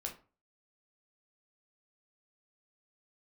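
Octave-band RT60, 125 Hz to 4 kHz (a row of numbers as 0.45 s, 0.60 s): 0.45 s, 0.40 s, 0.35 s, 0.35 s, 0.30 s, 0.25 s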